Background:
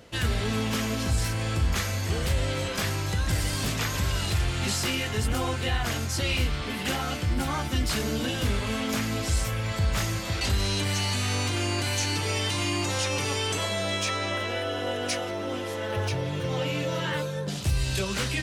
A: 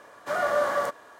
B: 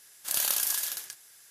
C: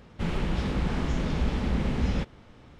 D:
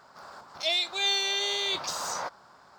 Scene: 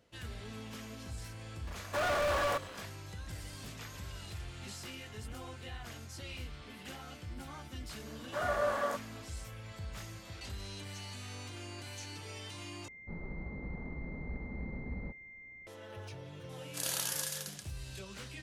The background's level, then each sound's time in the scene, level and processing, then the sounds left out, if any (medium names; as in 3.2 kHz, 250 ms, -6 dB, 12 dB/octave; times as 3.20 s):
background -18 dB
1.67 s: add A -15.5 dB + waveshaping leveller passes 5
8.06 s: add A -7.5 dB
12.88 s: replace with C -14.5 dB + class-D stage that switches slowly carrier 2.1 kHz
16.49 s: add B -5 dB + low-pass 9.8 kHz
not used: D